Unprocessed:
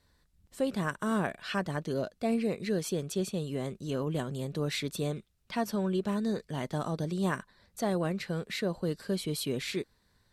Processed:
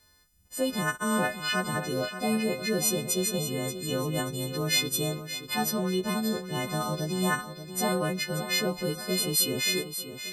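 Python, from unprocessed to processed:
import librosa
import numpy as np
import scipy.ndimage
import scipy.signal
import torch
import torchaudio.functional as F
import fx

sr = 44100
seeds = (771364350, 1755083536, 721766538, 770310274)

p1 = fx.freq_snap(x, sr, grid_st=3)
p2 = p1 + fx.echo_feedback(p1, sr, ms=581, feedback_pct=40, wet_db=-11.0, dry=0)
y = F.gain(torch.from_numpy(p2), 2.0).numpy()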